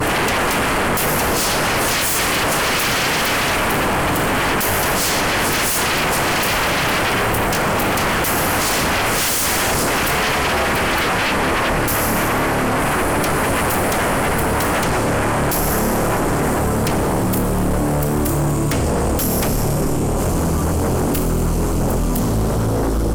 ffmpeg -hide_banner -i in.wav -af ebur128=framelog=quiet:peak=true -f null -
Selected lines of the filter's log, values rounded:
Integrated loudness:
  I:         -17.4 LUFS
  Threshold: -27.4 LUFS
Loudness range:
  LRA:         2.2 LU
  Threshold: -37.4 LUFS
  LRA low:   -18.8 LUFS
  LRA high:  -16.5 LUFS
True peak:
  Peak:      -11.2 dBFS